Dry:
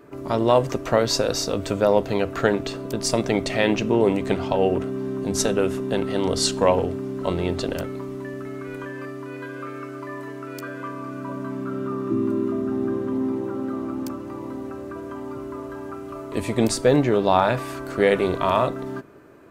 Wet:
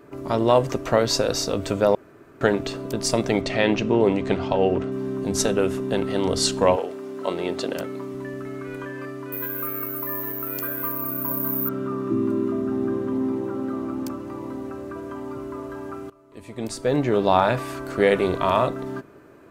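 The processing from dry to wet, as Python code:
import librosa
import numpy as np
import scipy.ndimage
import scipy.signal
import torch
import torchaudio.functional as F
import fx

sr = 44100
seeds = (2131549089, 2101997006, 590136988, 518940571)

y = fx.lowpass(x, sr, hz=6000.0, slope=12, at=(3.41, 4.92))
y = fx.highpass(y, sr, hz=fx.line((6.75, 500.0), (8.13, 140.0)), slope=12, at=(6.75, 8.13), fade=0.02)
y = fx.resample_bad(y, sr, factor=3, down='none', up='zero_stuff', at=(9.32, 11.69))
y = fx.edit(y, sr, fx.room_tone_fill(start_s=1.95, length_s=0.46),
    fx.fade_in_from(start_s=16.1, length_s=1.1, curve='qua', floor_db=-20.5), tone=tone)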